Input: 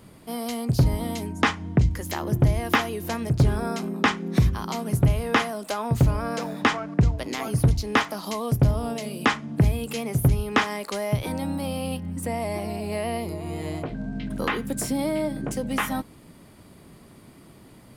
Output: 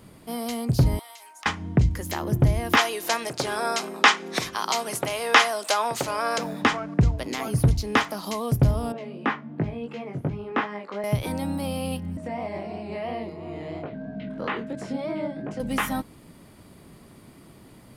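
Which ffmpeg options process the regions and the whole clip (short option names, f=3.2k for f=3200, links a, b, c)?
-filter_complex "[0:a]asettb=1/sr,asplit=3[a][b][c];[a]atrim=end=0.994[d];[b]atrim=start=0.99:end=1.46,asetpts=PTS-STARTPTS,afade=t=in:d=0.004:c=qsin,afade=t=out:st=0.466:d=0.004:c=qsin,highpass=f=840:w=0.5412,highpass=f=840:w=1.3066,acompressor=threshold=-41dB:ratio=12:attack=3.2:release=140:knee=1:detection=peak,acrusher=bits=7:mode=log:mix=0:aa=0.000001[e];[c]atrim=start=1.456[f];[d][e]acrossfade=d=0.004:c1=hsin:c2=qsin[g];[g][f]acrossfade=d=0.004:c1=qsin:c2=hsin,asettb=1/sr,asplit=3[h][i][j];[h]atrim=end=2.774[k];[i]atrim=start=2.77:end=6.38,asetpts=PTS-STARTPTS,afade=t=in:d=0.004:c=qsin,afade=t=out:st=3.606:d=0.004:c=qsin,aemphasis=mode=production:type=50fm,acontrast=76,highpass=570,lowpass=6k[l];[j]atrim=start=6.376[m];[k][l]acrossfade=d=0.004:c1=hsin:c2=qsin[n];[n][m]acrossfade=d=0.004:c1=qsin:c2=hsin,asettb=1/sr,asplit=3[o][p][q];[o]atrim=end=8.924[r];[p]atrim=start=8.92:end=11.04,asetpts=PTS-STARTPTS,afade=t=in:d=0.004:c=qsin,afade=t=out:st=2.116:d=0.004:c=qsin,flanger=delay=18.5:depth=3.3:speed=2.8,highpass=170,lowpass=2.1k[s];[q]atrim=start=11.036[t];[r][s]acrossfade=d=0.004:c1=hsin:c2=qsin[u];[u][t]acrossfade=d=0.004:c1=qsin:c2=hsin,asettb=1/sr,asplit=3[v][w][x];[v]atrim=end=12.174[y];[w]atrim=start=12.17:end=15.6,asetpts=PTS-STARTPTS,afade=t=in:d=0.004:c=qsin,afade=t=out:st=3.426:d=0.004:c=qsin,flanger=delay=20:depth=7.5:speed=3,aeval=exprs='val(0)+0.00891*sin(2*PI*630*n/s)':c=same,highpass=130,lowpass=3.3k[z];[x]atrim=start=15.596[aa];[y][z]acrossfade=d=0.004:c1=hsin:c2=qsin[ab];[ab][aa]acrossfade=d=0.004:c1=qsin:c2=hsin"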